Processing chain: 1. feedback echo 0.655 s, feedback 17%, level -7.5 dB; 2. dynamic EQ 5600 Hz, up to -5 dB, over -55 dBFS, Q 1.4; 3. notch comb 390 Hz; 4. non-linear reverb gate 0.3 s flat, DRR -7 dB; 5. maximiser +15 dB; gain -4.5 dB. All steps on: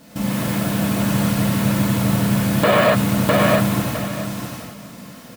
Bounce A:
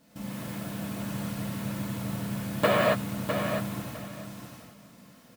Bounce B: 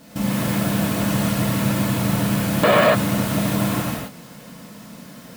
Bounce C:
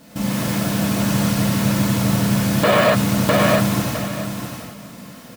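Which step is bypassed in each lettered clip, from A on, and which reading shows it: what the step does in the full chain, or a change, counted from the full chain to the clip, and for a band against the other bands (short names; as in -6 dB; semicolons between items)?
5, crest factor change +9.0 dB; 1, crest factor change +2.0 dB; 2, 8 kHz band +2.5 dB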